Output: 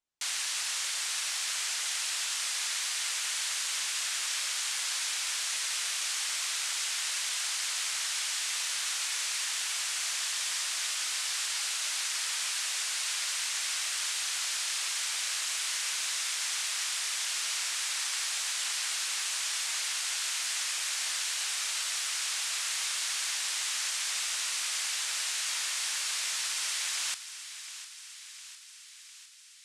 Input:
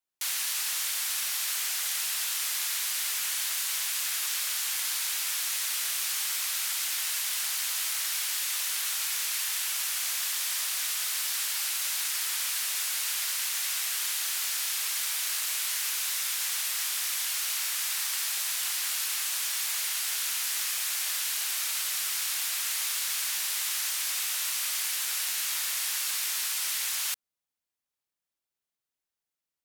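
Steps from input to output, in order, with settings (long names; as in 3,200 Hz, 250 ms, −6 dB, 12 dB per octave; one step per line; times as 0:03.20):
low-pass filter 9,000 Hz 24 dB per octave
low-shelf EQ 93 Hz +7.5 dB
feedback echo with a high-pass in the loop 705 ms, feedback 66%, high-pass 870 Hz, level −12.5 dB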